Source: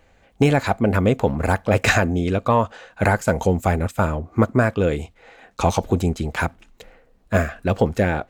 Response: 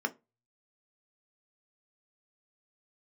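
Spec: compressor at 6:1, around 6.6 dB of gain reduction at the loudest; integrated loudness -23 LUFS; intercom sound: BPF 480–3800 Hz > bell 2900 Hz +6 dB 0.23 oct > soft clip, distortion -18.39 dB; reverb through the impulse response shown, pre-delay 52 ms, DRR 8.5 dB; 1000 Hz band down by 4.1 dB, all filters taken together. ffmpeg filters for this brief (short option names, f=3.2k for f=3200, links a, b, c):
-filter_complex "[0:a]equalizer=f=1k:t=o:g=-5,acompressor=threshold=-20dB:ratio=6,asplit=2[a][b];[1:a]atrim=start_sample=2205,adelay=52[c];[b][c]afir=irnorm=-1:irlink=0,volume=-14dB[d];[a][d]amix=inputs=2:normalize=0,highpass=480,lowpass=3.8k,equalizer=f=2.9k:t=o:w=0.23:g=6,asoftclip=threshold=-18dB,volume=9dB"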